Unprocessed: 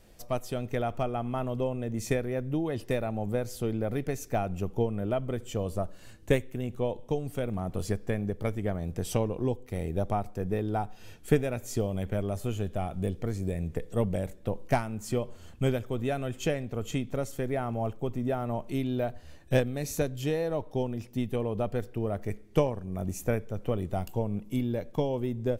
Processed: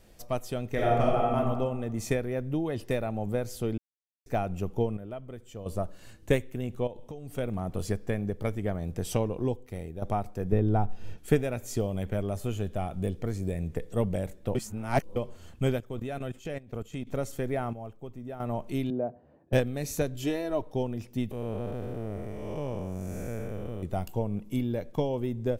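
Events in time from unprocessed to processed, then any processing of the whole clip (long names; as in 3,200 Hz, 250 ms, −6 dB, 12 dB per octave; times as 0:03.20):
0:00.73–0:01.36: thrown reverb, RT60 1.3 s, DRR −4 dB
0:03.78–0:04.26: silence
0:04.97–0:05.66: clip gain −10 dB
0:06.87–0:07.38: downward compressor, threshold −37 dBFS
0:09.47–0:10.02: fade out, to −11 dB
0:10.52–0:11.18: spectral tilt −2.5 dB per octave
0:14.55–0:15.16: reverse
0:15.80–0:17.07: output level in coarse steps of 17 dB
0:17.73–0:18.40: clip gain −10 dB
0:18.90–0:19.53: flat-topped band-pass 370 Hz, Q 0.54
0:20.14–0:20.62: comb filter 3 ms
0:21.31–0:23.83: spectrum smeared in time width 355 ms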